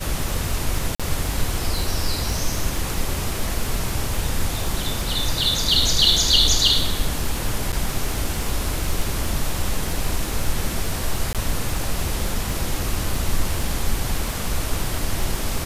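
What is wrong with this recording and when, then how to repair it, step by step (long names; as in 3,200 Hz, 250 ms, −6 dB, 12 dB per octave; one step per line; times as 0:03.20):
surface crackle 32 per second −25 dBFS
0:00.95–0:01.00: drop-out 46 ms
0:07.72–0:07.73: drop-out 8.1 ms
0:11.33–0:11.35: drop-out 17 ms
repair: click removal
repair the gap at 0:00.95, 46 ms
repair the gap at 0:07.72, 8.1 ms
repair the gap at 0:11.33, 17 ms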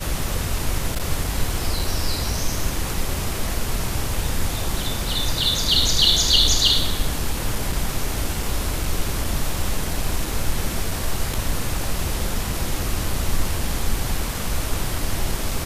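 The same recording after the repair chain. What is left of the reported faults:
none of them is left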